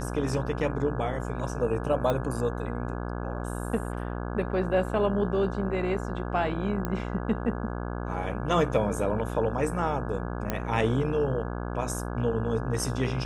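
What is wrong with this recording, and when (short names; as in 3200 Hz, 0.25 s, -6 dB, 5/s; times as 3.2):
buzz 60 Hz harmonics 28 -33 dBFS
2.1 pop -15 dBFS
6.85 pop -16 dBFS
10.5 pop -13 dBFS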